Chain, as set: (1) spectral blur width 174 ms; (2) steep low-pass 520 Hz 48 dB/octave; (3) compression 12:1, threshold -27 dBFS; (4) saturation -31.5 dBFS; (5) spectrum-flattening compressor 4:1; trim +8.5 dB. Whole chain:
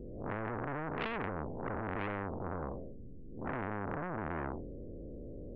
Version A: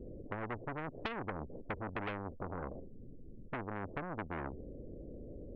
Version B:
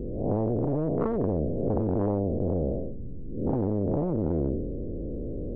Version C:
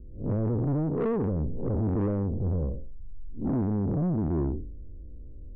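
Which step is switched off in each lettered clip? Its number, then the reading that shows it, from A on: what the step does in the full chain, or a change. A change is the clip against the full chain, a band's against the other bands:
1, 4 kHz band +3.5 dB; 4, distortion -11 dB; 5, 1 kHz band -15.5 dB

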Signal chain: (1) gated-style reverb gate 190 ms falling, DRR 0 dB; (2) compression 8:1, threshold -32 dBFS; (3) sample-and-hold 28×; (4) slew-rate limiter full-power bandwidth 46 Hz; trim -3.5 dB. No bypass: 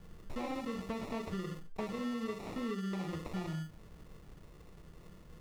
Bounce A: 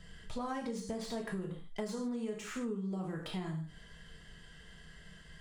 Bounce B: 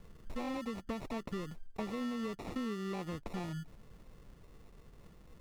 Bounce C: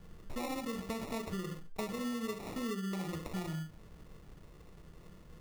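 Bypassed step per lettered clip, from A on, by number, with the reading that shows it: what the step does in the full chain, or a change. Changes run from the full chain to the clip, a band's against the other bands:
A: 3, distortion 0 dB; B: 1, momentary loudness spread change +3 LU; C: 4, distortion -12 dB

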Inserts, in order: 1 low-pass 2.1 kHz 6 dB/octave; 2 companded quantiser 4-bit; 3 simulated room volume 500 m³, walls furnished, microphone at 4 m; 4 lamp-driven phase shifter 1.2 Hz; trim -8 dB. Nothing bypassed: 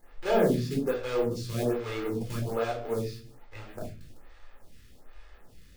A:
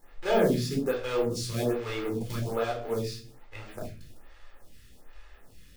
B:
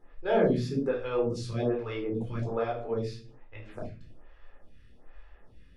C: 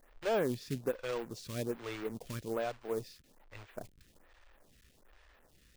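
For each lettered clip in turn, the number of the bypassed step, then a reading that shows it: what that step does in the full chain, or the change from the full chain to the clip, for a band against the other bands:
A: 1, 8 kHz band +4.5 dB; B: 2, distortion -14 dB; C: 3, loudness change -8.0 LU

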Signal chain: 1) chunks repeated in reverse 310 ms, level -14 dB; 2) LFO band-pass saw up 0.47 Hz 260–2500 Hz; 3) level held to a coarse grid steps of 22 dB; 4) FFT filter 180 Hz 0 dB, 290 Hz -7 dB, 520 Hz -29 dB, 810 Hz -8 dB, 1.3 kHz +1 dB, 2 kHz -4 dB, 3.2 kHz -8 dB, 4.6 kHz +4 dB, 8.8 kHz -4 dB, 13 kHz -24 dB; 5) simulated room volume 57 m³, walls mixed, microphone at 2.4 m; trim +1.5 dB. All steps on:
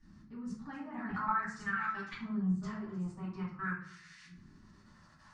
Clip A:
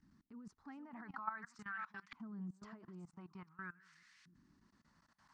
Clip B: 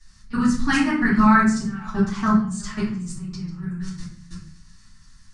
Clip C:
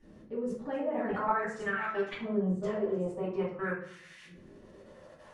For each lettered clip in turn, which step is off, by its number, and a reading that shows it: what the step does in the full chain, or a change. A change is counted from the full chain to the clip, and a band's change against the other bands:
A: 5, echo-to-direct 10.5 dB to none; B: 2, 4 kHz band +7.0 dB; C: 4, 500 Hz band +17.5 dB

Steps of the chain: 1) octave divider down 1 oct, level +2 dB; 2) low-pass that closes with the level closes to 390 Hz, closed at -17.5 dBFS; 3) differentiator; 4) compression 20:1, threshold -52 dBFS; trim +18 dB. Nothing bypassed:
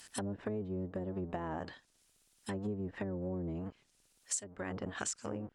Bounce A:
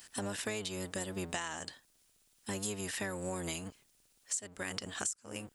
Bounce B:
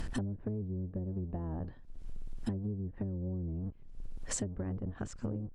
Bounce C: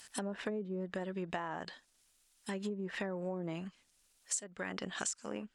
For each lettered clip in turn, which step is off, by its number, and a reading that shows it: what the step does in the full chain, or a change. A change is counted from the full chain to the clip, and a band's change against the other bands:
2, 4 kHz band +10.0 dB; 3, 125 Hz band +10.0 dB; 1, 125 Hz band -5.0 dB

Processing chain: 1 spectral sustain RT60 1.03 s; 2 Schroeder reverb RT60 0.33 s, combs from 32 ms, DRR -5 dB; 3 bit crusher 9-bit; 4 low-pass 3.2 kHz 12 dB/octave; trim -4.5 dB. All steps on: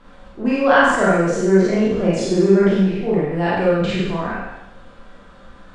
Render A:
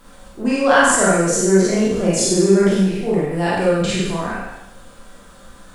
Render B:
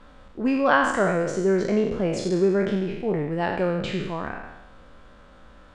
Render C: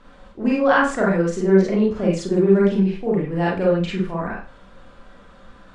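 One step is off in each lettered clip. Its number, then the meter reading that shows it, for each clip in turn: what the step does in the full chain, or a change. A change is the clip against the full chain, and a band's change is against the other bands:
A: 4, 8 kHz band +15.5 dB; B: 2, crest factor change +2.5 dB; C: 1, 4 kHz band -4.0 dB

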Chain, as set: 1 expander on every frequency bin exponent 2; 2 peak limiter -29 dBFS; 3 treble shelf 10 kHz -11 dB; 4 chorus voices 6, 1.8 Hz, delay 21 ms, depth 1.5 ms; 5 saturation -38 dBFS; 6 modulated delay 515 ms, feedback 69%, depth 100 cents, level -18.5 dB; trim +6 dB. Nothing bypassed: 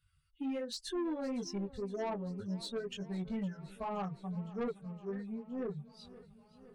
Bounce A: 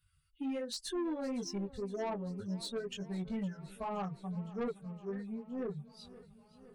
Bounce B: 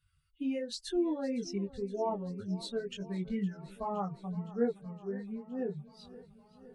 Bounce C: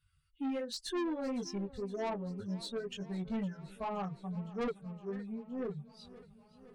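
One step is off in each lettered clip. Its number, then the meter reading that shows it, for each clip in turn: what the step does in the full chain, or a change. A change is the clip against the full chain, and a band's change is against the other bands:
3, 8 kHz band +3.0 dB; 5, distortion -11 dB; 2, 2 kHz band +2.0 dB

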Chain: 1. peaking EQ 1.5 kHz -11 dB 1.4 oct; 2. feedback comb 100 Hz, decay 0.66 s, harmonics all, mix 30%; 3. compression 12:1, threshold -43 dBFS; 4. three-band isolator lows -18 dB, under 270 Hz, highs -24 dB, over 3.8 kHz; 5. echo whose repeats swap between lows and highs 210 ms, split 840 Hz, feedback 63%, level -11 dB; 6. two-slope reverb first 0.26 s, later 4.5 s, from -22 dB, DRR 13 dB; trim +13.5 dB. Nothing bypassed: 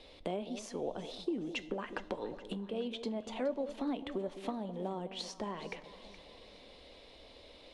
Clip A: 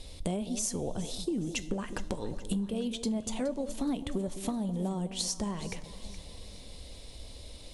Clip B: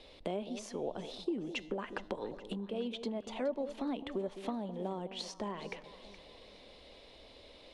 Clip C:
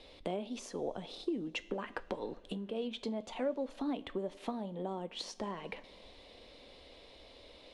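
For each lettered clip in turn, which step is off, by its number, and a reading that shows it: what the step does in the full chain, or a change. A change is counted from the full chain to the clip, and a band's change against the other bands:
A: 4, 8 kHz band +14.0 dB; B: 6, echo-to-direct -10.0 dB to -13.0 dB; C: 5, echo-to-direct -10.0 dB to -13.0 dB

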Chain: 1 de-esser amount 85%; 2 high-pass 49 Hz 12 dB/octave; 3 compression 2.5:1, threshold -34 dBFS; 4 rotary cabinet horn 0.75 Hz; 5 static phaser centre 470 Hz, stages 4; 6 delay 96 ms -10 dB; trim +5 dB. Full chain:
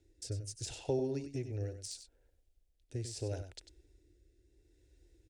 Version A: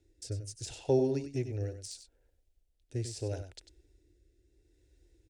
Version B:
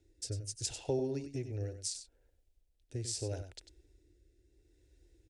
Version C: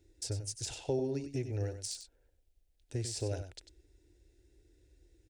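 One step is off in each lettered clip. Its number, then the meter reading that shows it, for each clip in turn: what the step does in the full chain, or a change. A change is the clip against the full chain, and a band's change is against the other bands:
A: 3, momentary loudness spread change +4 LU; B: 1, momentary loudness spread change -3 LU; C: 4, 8 kHz band +3.0 dB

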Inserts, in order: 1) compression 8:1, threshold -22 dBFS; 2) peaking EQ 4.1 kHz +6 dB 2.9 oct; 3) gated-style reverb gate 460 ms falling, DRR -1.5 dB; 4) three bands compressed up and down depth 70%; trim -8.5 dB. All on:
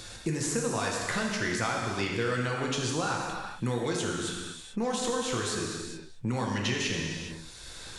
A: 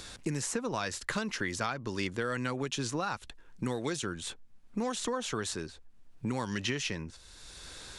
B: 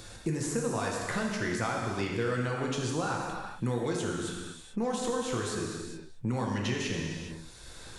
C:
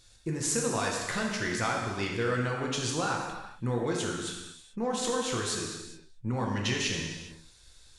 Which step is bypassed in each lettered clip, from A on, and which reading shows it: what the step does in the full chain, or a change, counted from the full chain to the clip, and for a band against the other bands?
3, momentary loudness spread change +4 LU; 2, 4 kHz band -4.5 dB; 4, momentary loudness spread change +1 LU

